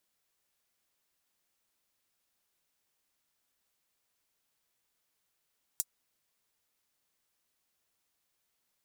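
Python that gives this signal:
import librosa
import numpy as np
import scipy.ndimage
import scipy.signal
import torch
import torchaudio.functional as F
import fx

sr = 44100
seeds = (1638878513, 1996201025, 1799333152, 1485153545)

y = fx.drum_hat(sr, length_s=0.24, from_hz=7000.0, decay_s=0.05)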